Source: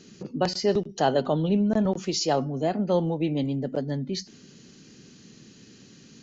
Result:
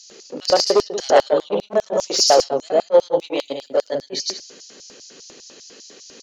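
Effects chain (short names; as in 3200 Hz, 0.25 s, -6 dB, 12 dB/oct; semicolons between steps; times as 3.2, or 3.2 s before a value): on a send: loudspeakers at several distances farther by 38 m -2 dB, 63 m -9 dB; on the sum: sine folder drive 6 dB, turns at -7.5 dBFS; LFO high-pass square 5 Hz 520–5200 Hz; 3.19–3.95 tilt +2 dB/oct; attack slew limiter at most 560 dB/s; gain -2.5 dB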